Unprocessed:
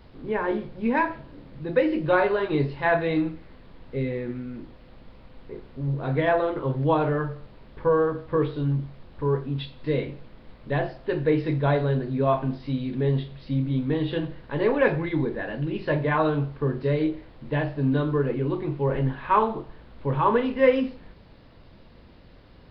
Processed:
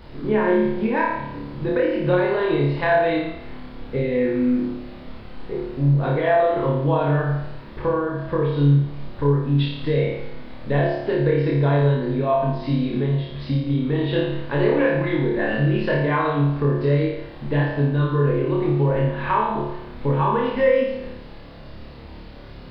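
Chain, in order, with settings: compression, threshold -28 dBFS, peak gain reduction 14.5 dB; flutter echo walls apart 4.8 m, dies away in 0.81 s; trim +7 dB

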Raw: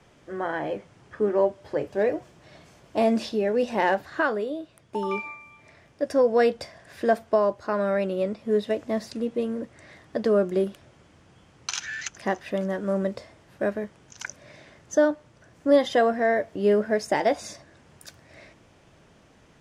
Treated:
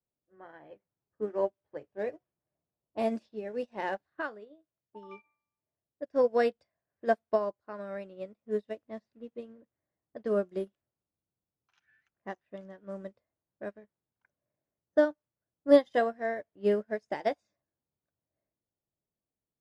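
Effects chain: level-controlled noise filter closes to 830 Hz, open at -19.5 dBFS; upward expansion 2.5:1, over -39 dBFS

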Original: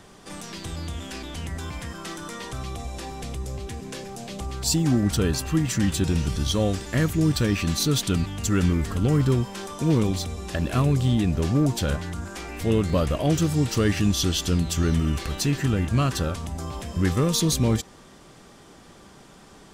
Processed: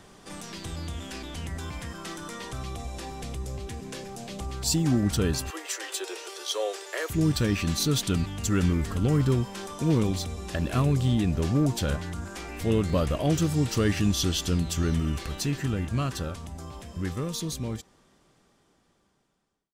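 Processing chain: fade out at the end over 5.53 s; 5.50–7.10 s: steep high-pass 370 Hz 72 dB/octave; trim -2.5 dB

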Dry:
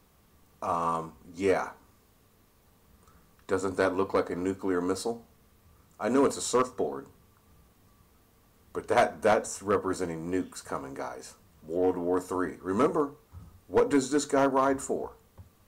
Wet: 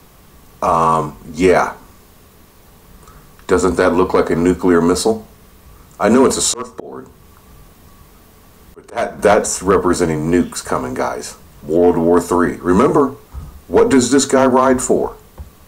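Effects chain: frequency shift -20 Hz; 6.35–9.19 s: slow attack 518 ms; loudness maximiser +18.5 dB; trim -1 dB

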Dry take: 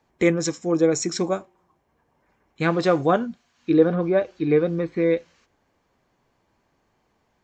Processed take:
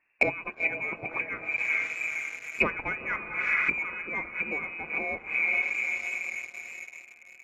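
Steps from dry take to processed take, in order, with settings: frequency inversion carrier 2.7 kHz; on a send: echo that smears into a reverb 462 ms, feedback 59%, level -12 dB; on the sum: waveshaping leveller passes 2; low-pass that closes with the level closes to 750 Hz, closed at -14 dBFS; trim -1.5 dB

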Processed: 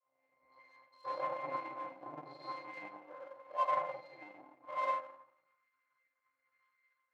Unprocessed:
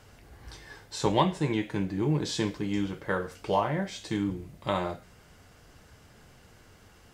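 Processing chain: tone controls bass -5 dB, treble -11 dB; pitch-class resonator C, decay 0.43 s; simulated room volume 750 m³, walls mixed, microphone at 5.2 m; rotary cabinet horn 1 Hz; power-law waveshaper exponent 1.4; high-pass sweep 750 Hz -> 1.5 kHz, 4.90–5.75 s; trim +5 dB

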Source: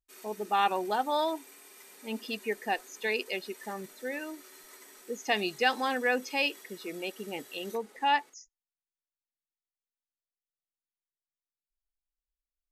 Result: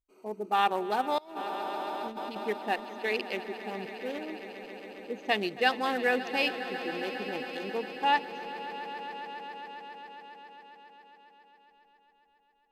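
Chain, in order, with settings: local Wiener filter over 25 samples; echo with a slow build-up 136 ms, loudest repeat 5, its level -16 dB; 1.18–2.48 s: compressor with a negative ratio -37 dBFS, ratio -0.5; trim +1 dB

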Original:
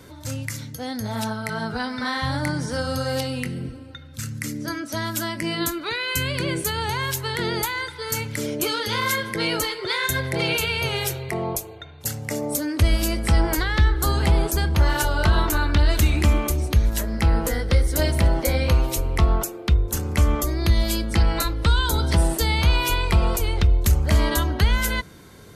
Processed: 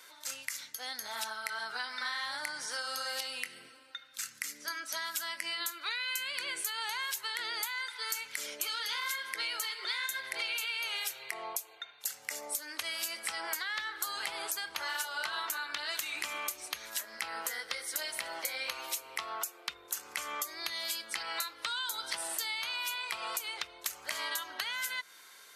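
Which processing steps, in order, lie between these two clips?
high-pass 1.3 kHz 12 dB/octave; compression, threshold -31 dBFS, peak gain reduction 10 dB; trim -1.5 dB

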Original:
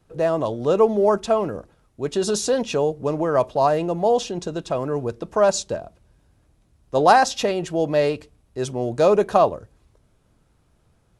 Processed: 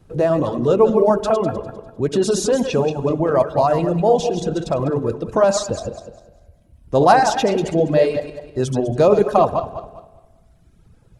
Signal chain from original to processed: backward echo that repeats 100 ms, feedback 57%, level -4.5 dB; bass shelf 410 Hz +8 dB; in parallel at +1 dB: compression 4:1, threshold -26 dBFS, peak gain reduction 16 dB; on the sum: reverb removal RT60 1.3 s; spring tank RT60 1.4 s, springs 59 ms, chirp 75 ms, DRR 16 dB; trim -2 dB

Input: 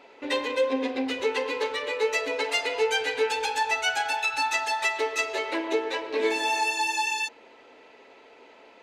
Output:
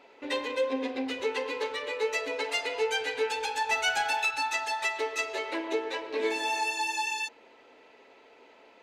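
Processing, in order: 3.69–4.31 s: waveshaping leveller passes 1; trim -4 dB

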